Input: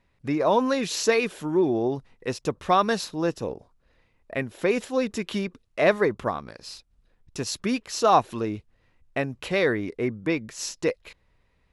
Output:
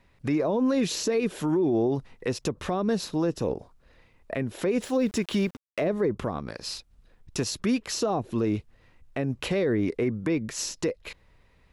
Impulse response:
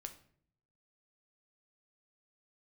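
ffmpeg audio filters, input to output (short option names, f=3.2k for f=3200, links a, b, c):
-filter_complex "[0:a]acrossover=split=500[a][b];[b]acompressor=threshold=-35dB:ratio=10[c];[a][c]amix=inputs=2:normalize=0,asettb=1/sr,asplit=3[d][e][f];[d]atrim=end=4.824[g];[e]atrim=start=4.82:end=5.87,asetpts=PTS-STARTPTS,afade=t=in:d=0.004:c=qsin,afade=t=out:st=1.046:d=0.004:c=qsin,aeval=exprs='val(0)*gte(abs(val(0)),0.00266)':c=same[h];[f]atrim=start=5.866[i];[g][h]acrossfade=d=0.004:c1=hsin:c2=qsin[j];[j][i]acrossfade=d=0.004:c1=qsin:c2=hsin,alimiter=limit=-23dB:level=0:latency=1:release=85,volume=6dB"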